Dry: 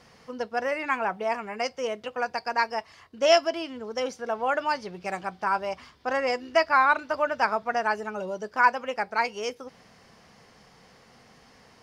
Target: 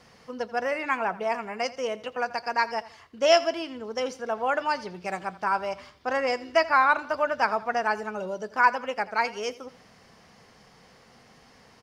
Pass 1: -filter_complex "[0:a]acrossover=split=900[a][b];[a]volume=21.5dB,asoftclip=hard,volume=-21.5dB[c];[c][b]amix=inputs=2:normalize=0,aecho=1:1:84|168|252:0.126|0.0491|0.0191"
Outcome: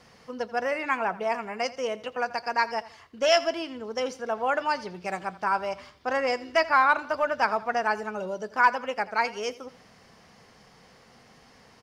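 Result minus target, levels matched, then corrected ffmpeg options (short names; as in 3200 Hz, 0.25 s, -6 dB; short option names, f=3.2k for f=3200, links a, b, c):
overloaded stage: distortion +31 dB
-filter_complex "[0:a]acrossover=split=900[a][b];[a]volume=14dB,asoftclip=hard,volume=-14dB[c];[c][b]amix=inputs=2:normalize=0,aecho=1:1:84|168|252:0.126|0.0491|0.0191"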